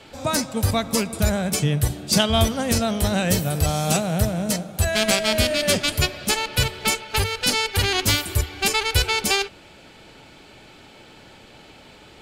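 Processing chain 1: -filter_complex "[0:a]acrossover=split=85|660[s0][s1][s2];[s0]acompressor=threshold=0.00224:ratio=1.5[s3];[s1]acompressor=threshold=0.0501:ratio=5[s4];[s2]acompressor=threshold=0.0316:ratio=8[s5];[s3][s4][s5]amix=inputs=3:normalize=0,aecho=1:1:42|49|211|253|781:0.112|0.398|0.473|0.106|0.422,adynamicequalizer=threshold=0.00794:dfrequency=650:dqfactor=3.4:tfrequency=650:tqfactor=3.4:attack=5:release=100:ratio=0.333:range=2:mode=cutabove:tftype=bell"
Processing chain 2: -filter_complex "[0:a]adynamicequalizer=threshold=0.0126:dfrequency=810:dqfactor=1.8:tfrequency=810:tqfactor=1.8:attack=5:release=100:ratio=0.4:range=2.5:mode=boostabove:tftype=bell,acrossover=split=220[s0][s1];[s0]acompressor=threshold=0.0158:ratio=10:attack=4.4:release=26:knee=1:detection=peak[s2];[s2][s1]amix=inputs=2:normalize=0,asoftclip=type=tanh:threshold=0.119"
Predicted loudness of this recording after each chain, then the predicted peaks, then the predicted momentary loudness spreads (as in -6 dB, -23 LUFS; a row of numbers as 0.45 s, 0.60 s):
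-27.0 LUFS, -25.0 LUFS; -12.5 dBFS, -18.5 dBFS; 18 LU, 4 LU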